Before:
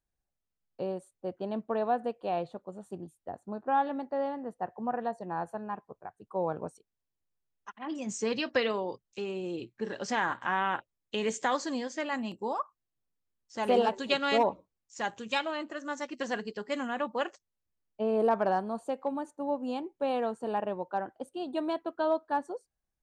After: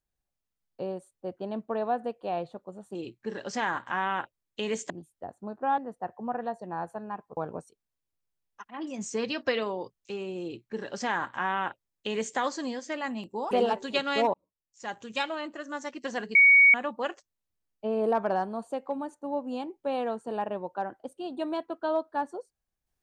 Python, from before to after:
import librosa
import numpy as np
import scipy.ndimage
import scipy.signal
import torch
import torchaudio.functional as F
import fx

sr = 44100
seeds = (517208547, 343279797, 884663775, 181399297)

y = fx.edit(x, sr, fx.cut(start_s=3.83, length_s=0.54),
    fx.cut(start_s=5.96, length_s=0.49),
    fx.duplicate(start_s=9.5, length_s=1.95, to_s=2.95),
    fx.cut(start_s=12.59, length_s=1.08),
    fx.fade_in_span(start_s=14.5, length_s=0.8),
    fx.bleep(start_s=16.51, length_s=0.39, hz=2240.0, db=-13.5), tone=tone)